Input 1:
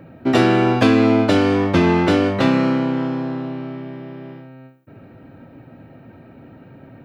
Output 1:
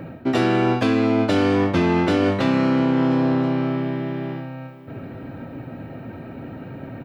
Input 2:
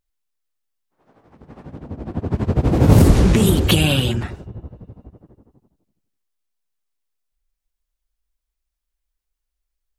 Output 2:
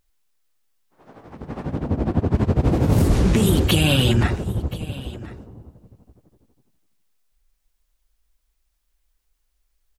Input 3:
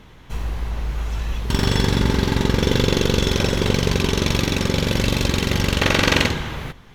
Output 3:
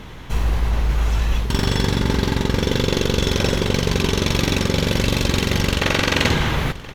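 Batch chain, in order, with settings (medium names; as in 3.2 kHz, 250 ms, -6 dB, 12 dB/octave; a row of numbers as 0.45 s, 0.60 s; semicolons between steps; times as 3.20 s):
reverse; compression 10:1, threshold -23 dBFS; reverse; delay 1027 ms -19 dB; normalise loudness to -20 LUFS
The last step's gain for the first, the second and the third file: +7.5 dB, +9.5 dB, +9.0 dB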